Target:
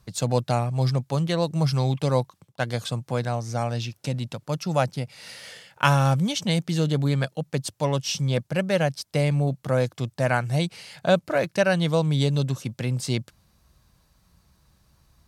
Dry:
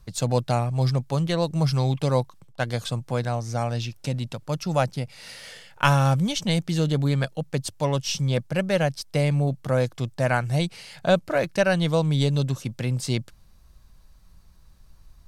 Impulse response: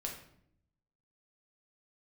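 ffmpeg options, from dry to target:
-af "highpass=78"

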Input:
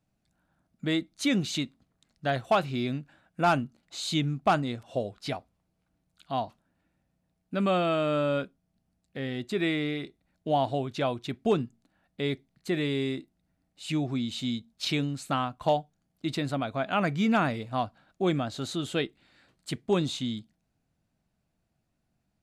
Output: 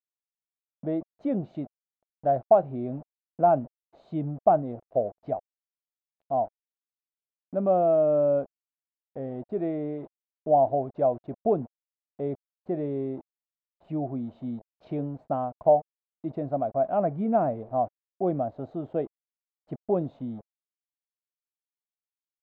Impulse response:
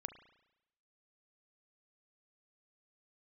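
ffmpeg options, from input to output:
-af "aeval=exprs='val(0)*gte(abs(val(0)),0.00794)':channel_layout=same,lowpass=frequency=660:width_type=q:width=3.8,volume=-3.5dB"

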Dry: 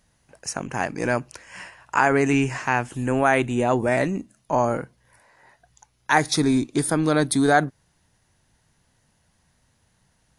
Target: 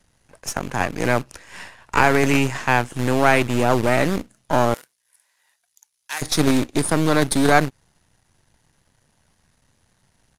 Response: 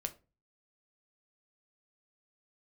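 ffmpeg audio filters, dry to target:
-filter_complex "[0:a]aeval=exprs='if(lt(val(0),0),0.251*val(0),val(0))':channel_layout=same,acrossover=split=470|1500[link_01][link_02][link_03];[link_01]acrusher=bits=2:mode=log:mix=0:aa=0.000001[link_04];[link_04][link_02][link_03]amix=inputs=3:normalize=0,aresample=32000,aresample=44100,asettb=1/sr,asplit=3[link_05][link_06][link_07];[link_05]atrim=end=4.744[link_08];[link_06]atrim=start=4.74:end=6.22,asetpts=PTS-STARTPTS,afade=type=in:duration=0.004:curve=qsin,afade=type=out:start_time=1.476:duration=0.004:curve=qsin,aderivative[link_09];[link_07]atrim=start=6.216[link_10];[link_08][link_09]acrossfade=duration=0.004:curve1=hsin:curve2=qsin[link_11];[link_11][link_10]acrossfade=duration=0.004:curve1=qsin:curve2=hsin,volume=5dB"

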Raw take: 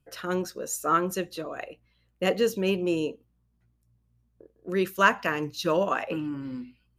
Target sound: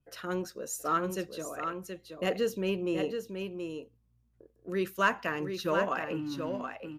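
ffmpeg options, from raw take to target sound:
ffmpeg -i in.wav -filter_complex "[0:a]asplit=2[link_01][link_02];[link_02]asoftclip=type=tanh:threshold=-21dB,volume=-7.5dB[link_03];[link_01][link_03]amix=inputs=2:normalize=0,aecho=1:1:726:0.473,adynamicequalizer=threshold=0.01:dfrequency=3400:dqfactor=0.7:tfrequency=3400:tqfactor=0.7:attack=5:release=100:ratio=0.375:range=2:mode=cutabove:tftype=highshelf,volume=-7.5dB" out.wav

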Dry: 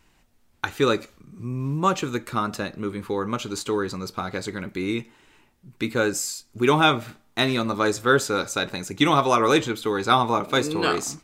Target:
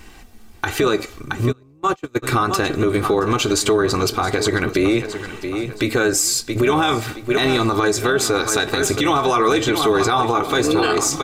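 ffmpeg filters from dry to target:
ffmpeg -i in.wav -filter_complex "[0:a]aecho=1:1:671|1342|2013:0.158|0.0523|0.0173,acompressor=threshold=-30dB:ratio=2.5,aecho=1:1:2.6:0.7,tremolo=f=220:d=0.462,asplit=3[link_01][link_02][link_03];[link_01]afade=type=out:start_time=1.51:duration=0.02[link_04];[link_02]agate=range=-34dB:threshold=-28dB:ratio=16:detection=peak,afade=type=in:start_time=1.51:duration=0.02,afade=type=out:start_time=2.22:duration=0.02[link_05];[link_03]afade=type=in:start_time=2.22:duration=0.02[link_06];[link_04][link_05][link_06]amix=inputs=3:normalize=0,alimiter=level_in=25dB:limit=-1dB:release=50:level=0:latency=1,volume=-7dB" out.wav

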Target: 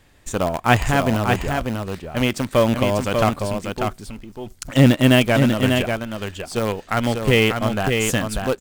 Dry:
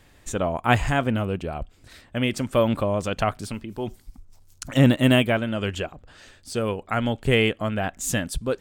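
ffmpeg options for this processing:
ffmpeg -i in.wav -filter_complex "[0:a]asplit=2[link_01][link_02];[link_02]acrusher=bits=4:dc=4:mix=0:aa=0.000001,volume=-6dB[link_03];[link_01][link_03]amix=inputs=2:normalize=0,aecho=1:1:592:0.562" out.wav

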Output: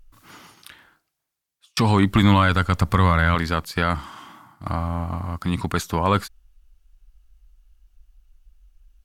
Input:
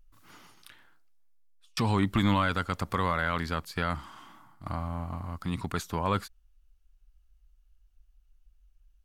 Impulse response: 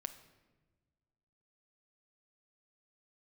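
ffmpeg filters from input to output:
-filter_complex "[0:a]asettb=1/sr,asplit=3[link_01][link_02][link_03];[link_01]atrim=end=2.084[link_04];[link_02]atrim=start=2.08:end=3.35,asetpts=PTS-STARTPTS,afade=type=in:duration=0.004:curve=qsin,afade=type=out:start_time=1.266:duration=0.004:curve=qsin,asubboost=boost=6.5:cutoff=210[link_05];[link_03]atrim=start=3.346[link_06];[link_04][link_05]acrossfade=duration=0.004:curve1=hsin:curve2=qsin[link_07];[link_07][link_06]acrossfade=duration=0.004:curve1=qsin:curve2=hsin,volume=8.5dB" -ar 48000 -c:a libopus -b:a 256k

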